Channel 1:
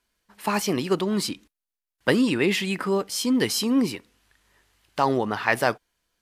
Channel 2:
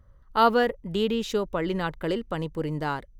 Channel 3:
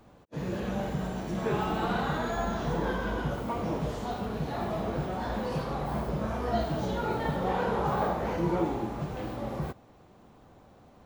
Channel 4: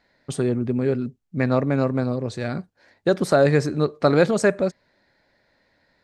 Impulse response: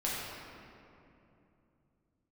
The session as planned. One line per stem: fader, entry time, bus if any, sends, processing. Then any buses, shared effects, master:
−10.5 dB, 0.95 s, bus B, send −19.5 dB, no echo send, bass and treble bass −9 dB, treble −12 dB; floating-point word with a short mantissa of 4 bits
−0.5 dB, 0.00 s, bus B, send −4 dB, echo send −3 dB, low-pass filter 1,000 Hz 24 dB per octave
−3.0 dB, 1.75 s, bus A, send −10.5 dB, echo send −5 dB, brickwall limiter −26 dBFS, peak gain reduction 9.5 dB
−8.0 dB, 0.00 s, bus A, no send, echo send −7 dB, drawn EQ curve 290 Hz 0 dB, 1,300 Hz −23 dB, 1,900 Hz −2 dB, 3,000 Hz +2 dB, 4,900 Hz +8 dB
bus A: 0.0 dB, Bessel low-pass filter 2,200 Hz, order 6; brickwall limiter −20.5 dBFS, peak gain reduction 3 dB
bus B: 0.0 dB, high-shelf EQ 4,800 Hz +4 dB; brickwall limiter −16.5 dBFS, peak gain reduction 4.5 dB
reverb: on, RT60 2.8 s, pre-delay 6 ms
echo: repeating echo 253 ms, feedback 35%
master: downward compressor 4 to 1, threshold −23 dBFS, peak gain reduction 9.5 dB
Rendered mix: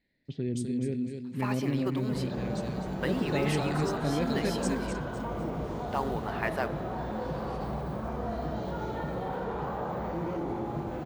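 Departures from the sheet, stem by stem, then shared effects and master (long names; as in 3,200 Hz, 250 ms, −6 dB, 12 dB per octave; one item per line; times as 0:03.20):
stem 2: muted
master: missing downward compressor 4 to 1, threshold −23 dBFS, peak gain reduction 9.5 dB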